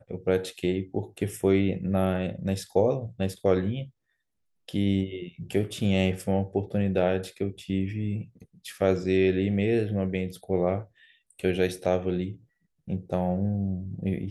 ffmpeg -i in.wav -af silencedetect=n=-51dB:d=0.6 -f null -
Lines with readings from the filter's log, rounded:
silence_start: 3.90
silence_end: 4.68 | silence_duration: 0.78